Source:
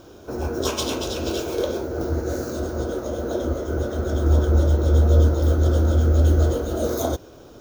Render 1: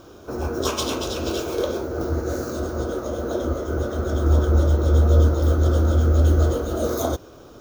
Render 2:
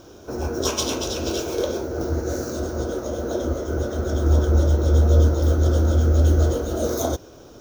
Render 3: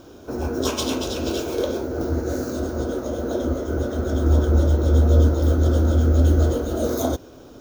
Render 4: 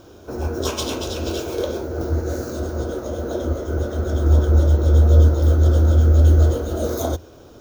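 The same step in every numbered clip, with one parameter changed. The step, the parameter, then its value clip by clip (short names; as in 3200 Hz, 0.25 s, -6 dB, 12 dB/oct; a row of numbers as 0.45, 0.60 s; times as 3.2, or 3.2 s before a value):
bell, frequency: 1200, 5800, 260, 84 Hz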